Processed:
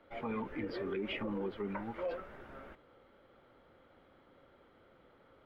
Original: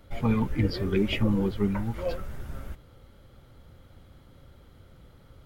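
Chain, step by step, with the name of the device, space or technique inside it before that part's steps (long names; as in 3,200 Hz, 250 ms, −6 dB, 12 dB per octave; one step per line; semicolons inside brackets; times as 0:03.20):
DJ mixer with the lows and highs turned down (three-way crossover with the lows and the highs turned down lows −21 dB, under 260 Hz, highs −23 dB, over 3,000 Hz; brickwall limiter −27.5 dBFS, peak gain reduction 9 dB)
level −2 dB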